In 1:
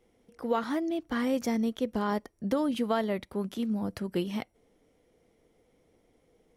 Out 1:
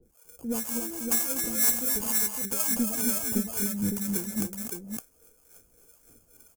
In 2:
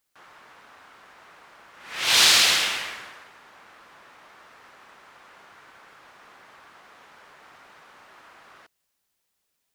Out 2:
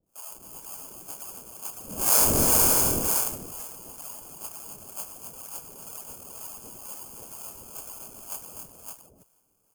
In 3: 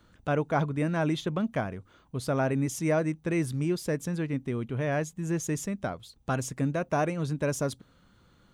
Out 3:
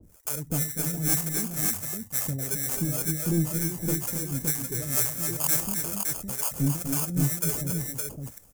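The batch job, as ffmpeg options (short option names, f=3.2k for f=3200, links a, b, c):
-filter_complex "[0:a]acrossover=split=320|3000[a][b][c];[b]acompressor=threshold=-44dB:ratio=2.5[d];[a][d][c]amix=inputs=3:normalize=0,aphaser=in_gain=1:out_gain=1:delay=2.4:decay=0.7:speed=1.8:type=sinusoidal,acrusher=samples=23:mix=1:aa=0.000001,asoftclip=type=tanh:threshold=-18.5dB,acrossover=split=550[e][f];[e]aeval=exprs='val(0)*(1-1/2+1/2*cos(2*PI*2.1*n/s))':c=same[g];[f]aeval=exprs='val(0)*(1-1/2-1/2*cos(2*PI*2.1*n/s))':c=same[h];[g][h]amix=inputs=2:normalize=0,aexciter=amount=10.7:drive=4.2:freq=5.8k,volume=9dB,asoftclip=hard,volume=-9dB,asplit=2[i][j];[j]aecho=0:1:246|271|563:0.335|0.473|0.631[k];[i][k]amix=inputs=2:normalize=0"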